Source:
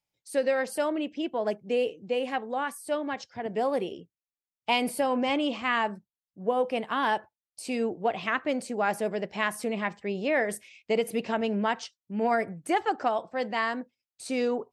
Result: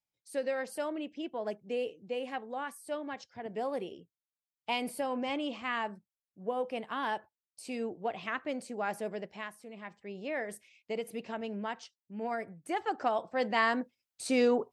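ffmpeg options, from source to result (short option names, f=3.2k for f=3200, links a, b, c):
-af "volume=14dB,afade=t=out:st=9.16:d=0.43:silence=0.237137,afade=t=in:st=9.59:d=0.7:silence=0.316228,afade=t=in:st=12.63:d=1.11:silence=0.266073"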